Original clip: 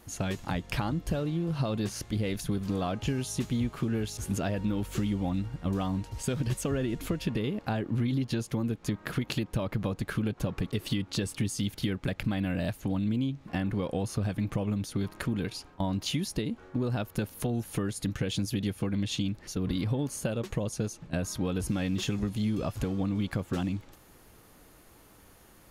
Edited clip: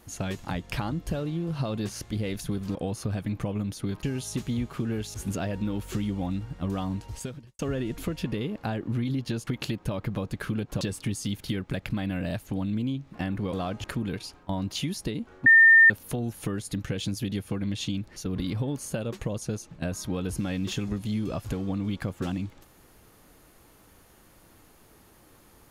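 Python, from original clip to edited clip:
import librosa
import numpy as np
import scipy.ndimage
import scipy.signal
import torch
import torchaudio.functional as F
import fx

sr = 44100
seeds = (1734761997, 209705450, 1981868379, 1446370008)

y = fx.edit(x, sr, fx.swap(start_s=2.75, length_s=0.31, other_s=13.87, other_length_s=1.28),
    fx.fade_out_span(start_s=6.18, length_s=0.44, curve='qua'),
    fx.cut(start_s=8.5, length_s=0.65),
    fx.cut(start_s=10.49, length_s=0.66),
    fx.bleep(start_s=16.77, length_s=0.44, hz=1810.0, db=-11.5), tone=tone)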